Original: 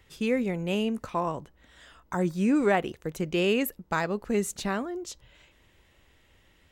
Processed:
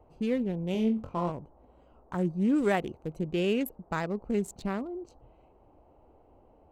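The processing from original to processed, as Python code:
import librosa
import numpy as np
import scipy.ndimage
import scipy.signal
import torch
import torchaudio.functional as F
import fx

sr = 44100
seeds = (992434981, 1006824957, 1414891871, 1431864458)

y = fx.wiener(x, sr, points=25)
y = fx.low_shelf(y, sr, hz=340.0, db=5.5)
y = fx.room_flutter(y, sr, wall_m=3.9, rt60_s=0.23, at=(0.72, 1.3))
y = fx.dmg_noise_band(y, sr, seeds[0], low_hz=230.0, high_hz=870.0, level_db=-57.0)
y = fx.high_shelf(y, sr, hz=3700.0, db=9.5, at=(2.58, 3.19))
y = y * 10.0 ** (-5.0 / 20.0)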